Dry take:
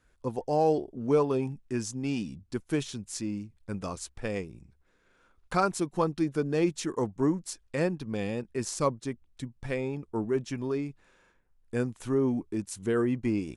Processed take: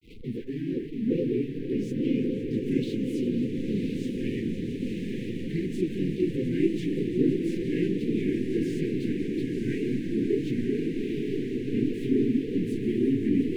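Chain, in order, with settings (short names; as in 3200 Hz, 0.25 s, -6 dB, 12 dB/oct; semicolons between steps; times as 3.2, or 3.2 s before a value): zero-crossing step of -32.5 dBFS; on a send: swelling echo 0.173 s, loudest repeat 5, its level -13.5 dB; on the sum: FFT band-reject 450–1800 Hz; resonant high shelf 4200 Hz -11.5 dB, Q 1.5; grains 0.26 s, grains 28/s, spray 21 ms, pitch spread up and down by 3 st; reverse; upward compressor, threshold -38 dBFS; reverse; bell 250 Hz +9.5 dB 1.6 oct; diffused feedback echo 1.008 s, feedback 66%, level -5 dB; gain -1 dB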